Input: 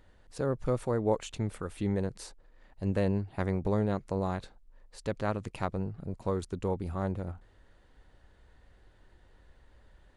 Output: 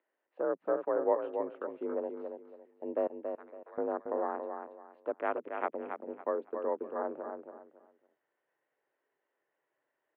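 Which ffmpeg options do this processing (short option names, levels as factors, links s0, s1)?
-filter_complex "[0:a]afwtdn=0.01,highpass=f=280:t=q:w=0.5412,highpass=f=280:t=q:w=1.307,lowpass=f=2800:t=q:w=0.5176,lowpass=f=2800:t=q:w=0.7071,lowpass=f=2800:t=q:w=1.932,afreqshift=51,asettb=1/sr,asplit=3[s0][s1][s2];[s0]atrim=end=3.074[s3];[s1]atrim=start=3.07:end=3.78,asetpts=PTS-STARTPTS,afade=t=in:d=0.004:c=qsin,afade=t=out:st=0.706:d=0.004:c=qsin,aderivative[s4];[s2]atrim=start=3.776[s5];[s3][s4]acrossfade=d=0.004:c1=hsin:c2=qsin[s6];[s6][s5]acrossfade=d=0.004:c1=qsin:c2=hsin,aecho=1:1:279|558|837:0.473|0.123|0.032"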